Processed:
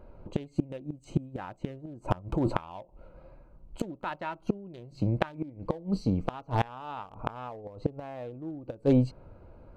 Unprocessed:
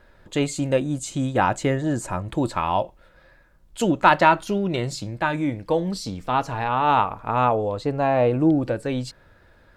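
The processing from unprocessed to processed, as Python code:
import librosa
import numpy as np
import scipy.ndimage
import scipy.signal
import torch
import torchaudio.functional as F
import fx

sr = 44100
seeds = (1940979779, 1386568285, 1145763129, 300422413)

y = fx.wiener(x, sr, points=25)
y = fx.over_compress(y, sr, threshold_db=-27.0, ratio=-1.0, at=(2.02, 2.57))
y = fx.gate_flip(y, sr, shuts_db=-18.0, range_db=-25)
y = y * 10.0 ** (5.0 / 20.0)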